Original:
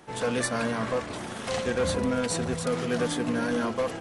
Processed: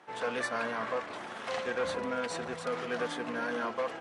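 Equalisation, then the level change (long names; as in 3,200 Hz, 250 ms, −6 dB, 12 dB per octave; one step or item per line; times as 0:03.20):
resonant band-pass 1,300 Hz, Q 0.59
−1.5 dB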